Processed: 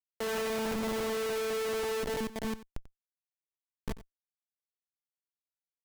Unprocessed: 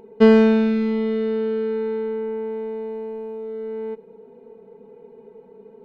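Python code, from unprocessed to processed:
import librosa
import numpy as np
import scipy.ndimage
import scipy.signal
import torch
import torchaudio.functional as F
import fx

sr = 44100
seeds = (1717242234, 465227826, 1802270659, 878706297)

y = scipy.signal.sosfilt(scipy.signal.butter(2, 710.0, 'highpass', fs=sr, output='sos'), x)
y = fx.schmitt(y, sr, flips_db=-32.5)
y = y + 10.0 ** (-16.0 / 20.0) * np.pad(y, (int(91 * sr / 1000.0), 0))[:len(y)]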